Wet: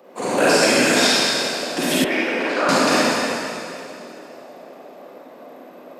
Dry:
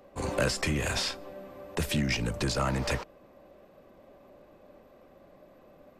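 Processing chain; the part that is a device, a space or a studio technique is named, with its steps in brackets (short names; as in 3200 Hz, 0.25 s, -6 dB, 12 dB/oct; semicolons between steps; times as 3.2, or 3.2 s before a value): whispering ghost (whisperiser; HPF 220 Hz 24 dB/oct; reverb RT60 2.7 s, pre-delay 34 ms, DRR -8 dB); 2.04–2.69 three-band isolator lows -23 dB, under 290 Hz, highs -21 dB, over 2700 Hz; gain +6.5 dB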